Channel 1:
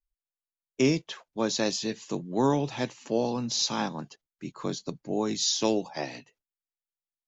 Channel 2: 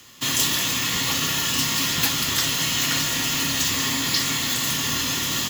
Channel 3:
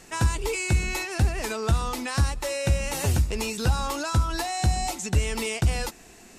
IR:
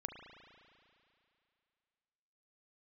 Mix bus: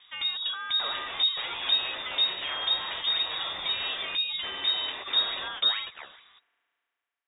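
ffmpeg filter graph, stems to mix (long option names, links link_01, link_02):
-filter_complex "[0:a]aeval=exprs='val(0)*sin(2*PI*1700*n/s+1700*0.75/2.3*sin(2*PI*2.3*n/s))':channel_layout=same,volume=-8.5dB,asplit=3[link_01][link_02][link_03];[link_02]volume=-16.5dB[link_04];[1:a]volume=-8dB[link_05];[2:a]acrossover=split=1200[link_06][link_07];[link_06]aeval=exprs='val(0)*(1-0.5/2+0.5/2*cos(2*PI*2.3*n/s))':channel_layout=same[link_08];[link_07]aeval=exprs='val(0)*(1-0.5/2-0.5/2*cos(2*PI*2.3*n/s))':channel_layout=same[link_09];[link_08][link_09]amix=inputs=2:normalize=0,volume=-3.5dB[link_10];[link_03]apad=whole_len=242221[link_11];[link_05][link_11]sidechaingate=range=-33dB:threshold=-57dB:ratio=16:detection=peak[link_12];[link_01][link_12]amix=inputs=2:normalize=0,alimiter=level_in=1dB:limit=-24dB:level=0:latency=1:release=21,volume=-1dB,volume=0dB[link_13];[3:a]atrim=start_sample=2205[link_14];[link_04][link_14]afir=irnorm=-1:irlink=0[link_15];[link_10][link_13][link_15]amix=inputs=3:normalize=0,lowpass=frequency=3200:width_type=q:width=0.5098,lowpass=frequency=3200:width_type=q:width=0.6013,lowpass=frequency=3200:width_type=q:width=0.9,lowpass=frequency=3200:width_type=q:width=2.563,afreqshift=-3800"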